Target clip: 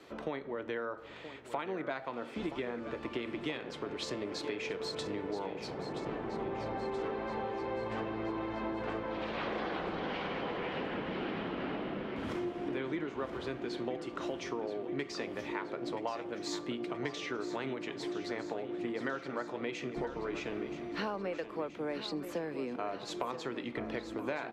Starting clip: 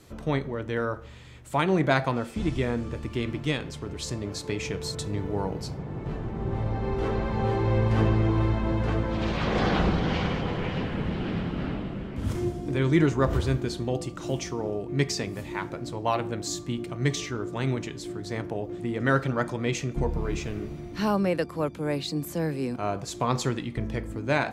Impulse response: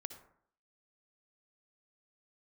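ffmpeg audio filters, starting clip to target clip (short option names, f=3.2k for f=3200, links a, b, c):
-filter_complex "[0:a]acrossover=split=250 4200:gain=0.0891 1 0.141[a][b][c];[a][b][c]amix=inputs=3:normalize=0,acompressor=threshold=-36dB:ratio=12,aecho=1:1:976|1952|2928|3904|4880|5856|6832:0.266|0.154|0.0895|0.0519|0.0301|0.0175|0.0101,volume=2.5dB"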